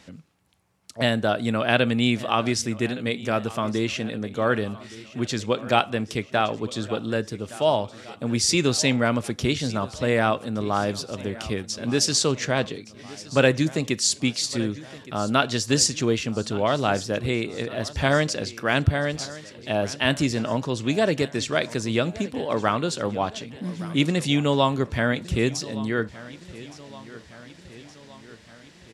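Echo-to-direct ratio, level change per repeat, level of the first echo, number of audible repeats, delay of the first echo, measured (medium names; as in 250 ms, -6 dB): -16.5 dB, -4.5 dB, -18.5 dB, 4, 1167 ms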